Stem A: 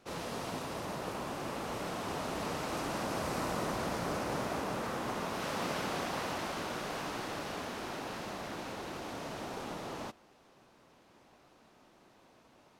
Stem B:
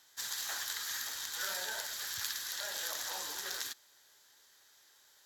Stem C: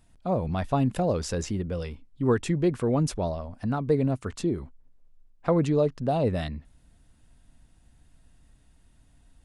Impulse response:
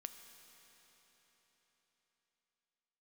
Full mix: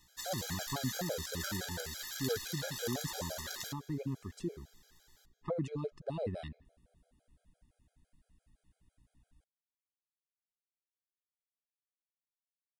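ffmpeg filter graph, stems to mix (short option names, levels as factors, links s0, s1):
-filter_complex "[1:a]volume=0.75,asplit=2[s0][s1];[s1]volume=0.562[s2];[2:a]volume=0.299,asplit=2[s3][s4];[s4]volume=0.133[s5];[3:a]atrim=start_sample=2205[s6];[s2][s5]amix=inputs=2:normalize=0[s7];[s7][s6]afir=irnorm=-1:irlink=0[s8];[s0][s3][s8]amix=inputs=3:normalize=0,aeval=exprs='val(0)+0.000316*(sin(2*PI*60*n/s)+sin(2*PI*2*60*n/s)/2+sin(2*PI*3*60*n/s)/3+sin(2*PI*4*60*n/s)/4+sin(2*PI*5*60*n/s)/5)':c=same,afftfilt=real='re*gt(sin(2*PI*5.9*pts/sr)*(1-2*mod(floor(b*sr/1024/420),2)),0)':imag='im*gt(sin(2*PI*5.9*pts/sr)*(1-2*mod(floor(b*sr/1024/420),2)),0)':win_size=1024:overlap=0.75"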